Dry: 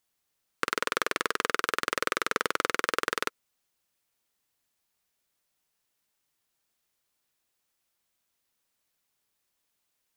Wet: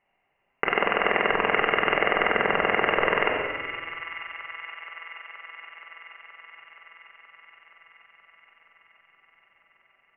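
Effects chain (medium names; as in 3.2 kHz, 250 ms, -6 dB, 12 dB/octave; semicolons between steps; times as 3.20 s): square wave that keeps the level; rippled Chebyshev low-pass 2.9 kHz, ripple 9 dB; feedback echo behind a high-pass 474 ms, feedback 77%, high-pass 1.6 kHz, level -14 dB; simulated room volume 1000 m³, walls mixed, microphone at 1.2 m; loudness maximiser +17 dB; trim -5.5 dB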